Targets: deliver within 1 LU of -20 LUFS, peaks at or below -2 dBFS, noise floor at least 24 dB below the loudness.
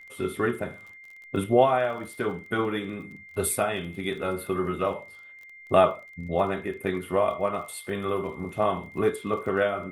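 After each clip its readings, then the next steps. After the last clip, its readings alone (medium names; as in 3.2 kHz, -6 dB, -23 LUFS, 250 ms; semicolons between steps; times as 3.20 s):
tick rate 30 per s; steady tone 2.1 kHz; tone level -45 dBFS; loudness -27.5 LUFS; peak level -6.5 dBFS; loudness target -20.0 LUFS
-> de-click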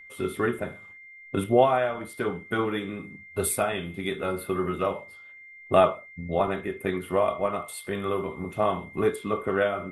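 tick rate 0 per s; steady tone 2.1 kHz; tone level -45 dBFS
-> band-stop 2.1 kHz, Q 30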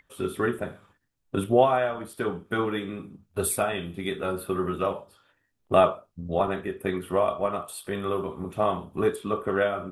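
steady tone not found; loudness -27.5 LUFS; peak level -6.5 dBFS; loudness target -20.0 LUFS
-> trim +7.5 dB; peak limiter -2 dBFS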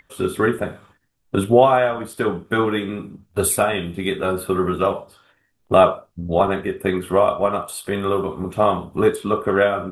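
loudness -20.0 LUFS; peak level -2.0 dBFS; noise floor -65 dBFS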